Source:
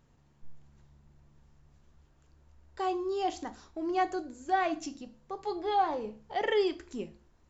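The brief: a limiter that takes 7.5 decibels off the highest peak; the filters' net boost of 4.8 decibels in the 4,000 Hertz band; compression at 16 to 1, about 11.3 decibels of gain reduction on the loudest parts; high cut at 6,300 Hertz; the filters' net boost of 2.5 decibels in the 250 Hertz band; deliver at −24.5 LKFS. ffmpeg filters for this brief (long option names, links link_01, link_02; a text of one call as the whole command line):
ffmpeg -i in.wav -af "lowpass=6300,equalizer=frequency=250:width_type=o:gain=4,equalizer=frequency=4000:width_type=o:gain=7,acompressor=threshold=-33dB:ratio=16,volume=17dB,alimiter=limit=-15dB:level=0:latency=1" out.wav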